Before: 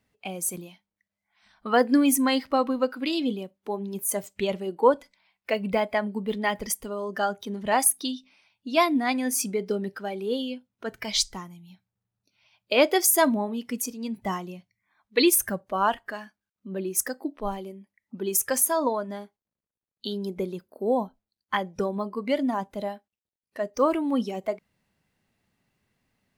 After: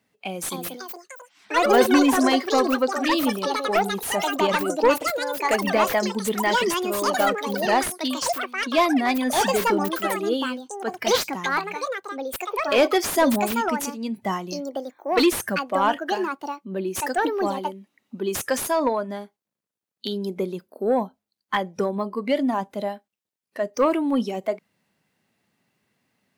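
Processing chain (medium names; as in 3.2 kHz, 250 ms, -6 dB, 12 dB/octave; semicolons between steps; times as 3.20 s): high-pass 150 Hz; saturation -14.5 dBFS, distortion -17 dB; ever faster or slower copies 338 ms, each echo +6 st, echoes 3; slew-rate limiter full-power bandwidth 220 Hz; trim +4 dB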